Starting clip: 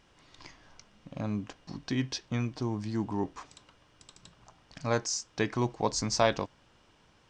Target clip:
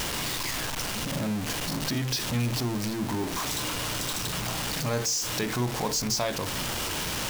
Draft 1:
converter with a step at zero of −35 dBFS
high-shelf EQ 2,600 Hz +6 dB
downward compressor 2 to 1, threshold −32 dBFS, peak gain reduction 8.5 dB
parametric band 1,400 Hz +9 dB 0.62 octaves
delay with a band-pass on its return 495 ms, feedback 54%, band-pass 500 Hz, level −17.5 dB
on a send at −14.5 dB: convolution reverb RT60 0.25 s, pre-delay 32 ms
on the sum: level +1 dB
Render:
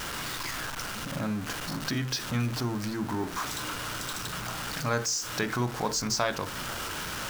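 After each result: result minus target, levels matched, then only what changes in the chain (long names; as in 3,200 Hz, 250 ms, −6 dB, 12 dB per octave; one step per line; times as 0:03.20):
converter with a step at zero: distortion −7 dB; 1,000 Hz band +3.0 dB
change: converter with a step at zero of −26 dBFS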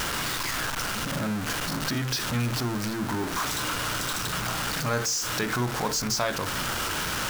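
1,000 Hz band +3.0 dB
remove: parametric band 1,400 Hz +9 dB 0.62 octaves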